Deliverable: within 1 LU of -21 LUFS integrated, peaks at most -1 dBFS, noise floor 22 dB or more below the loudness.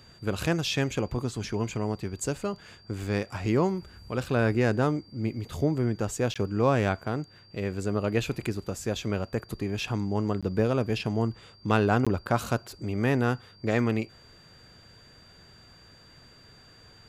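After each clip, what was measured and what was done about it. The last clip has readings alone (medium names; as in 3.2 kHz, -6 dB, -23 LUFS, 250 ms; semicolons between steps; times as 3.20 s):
dropouts 3; longest dropout 16 ms; steady tone 4.7 kHz; tone level -55 dBFS; loudness -28.5 LUFS; peak level -10.0 dBFS; loudness target -21.0 LUFS
-> interpolate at 6.34/10.41/12.05 s, 16 ms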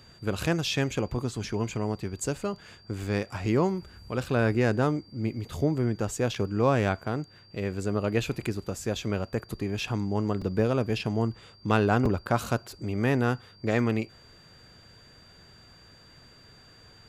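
dropouts 0; steady tone 4.7 kHz; tone level -55 dBFS
-> band-stop 4.7 kHz, Q 30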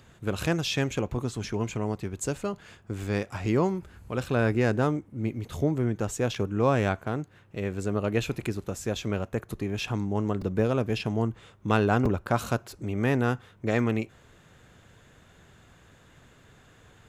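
steady tone not found; loudness -28.5 LUFS; peak level -9.5 dBFS; loudness target -21.0 LUFS
-> trim +7.5 dB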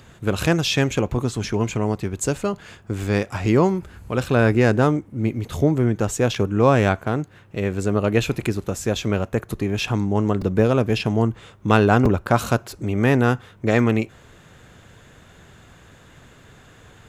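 loudness -21.0 LUFS; peak level -2.0 dBFS; noise floor -49 dBFS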